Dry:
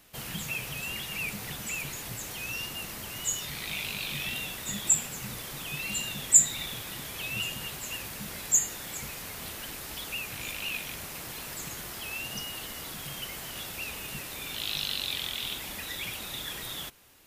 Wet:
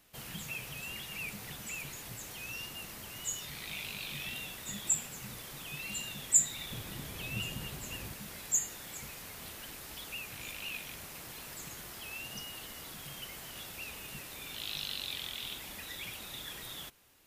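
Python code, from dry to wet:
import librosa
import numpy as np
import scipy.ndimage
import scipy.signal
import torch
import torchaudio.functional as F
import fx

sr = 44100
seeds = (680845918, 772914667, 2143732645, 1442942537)

y = fx.low_shelf(x, sr, hz=400.0, db=9.5, at=(6.7, 8.14))
y = y * 10.0 ** (-6.5 / 20.0)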